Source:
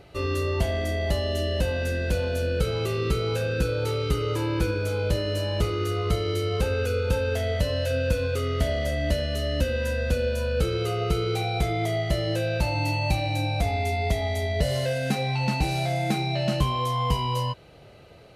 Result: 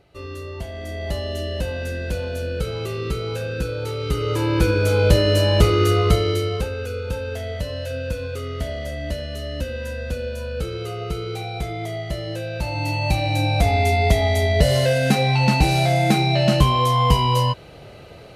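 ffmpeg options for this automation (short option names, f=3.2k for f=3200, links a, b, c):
-af "volume=20.5dB,afade=t=in:st=0.72:d=0.44:silence=0.473151,afade=t=in:st=3.96:d=1.14:silence=0.298538,afade=t=out:st=5.9:d=0.81:silence=0.237137,afade=t=in:st=12.53:d=1.27:silence=0.298538"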